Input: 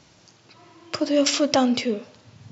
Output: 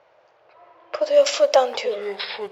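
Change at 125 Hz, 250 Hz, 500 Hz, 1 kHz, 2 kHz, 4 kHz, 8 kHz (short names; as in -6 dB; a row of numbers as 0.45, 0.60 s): under -10 dB, -19.0 dB, +7.0 dB, +3.5 dB, +1.5 dB, -1.0 dB, n/a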